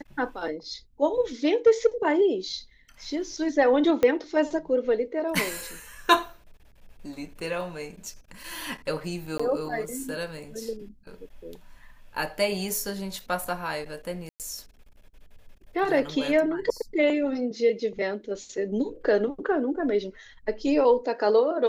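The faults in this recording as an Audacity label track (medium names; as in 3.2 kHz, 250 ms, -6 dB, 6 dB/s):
4.030000	4.030000	pop -11 dBFS
9.380000	9.390000	dropout 15 ms
14.290000	14.400000	dropout 108 ms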